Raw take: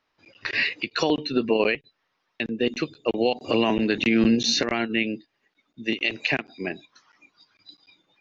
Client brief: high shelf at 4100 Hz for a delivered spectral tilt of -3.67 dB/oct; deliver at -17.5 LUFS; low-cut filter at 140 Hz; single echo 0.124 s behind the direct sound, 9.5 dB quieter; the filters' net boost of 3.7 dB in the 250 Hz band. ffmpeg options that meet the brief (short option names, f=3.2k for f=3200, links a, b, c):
-af "highpass=140,equalizer=f=250:t=o:g=5,highshelf=f=4.1k:g=-8,aecho=1:1:124:0.335,volume=5dB"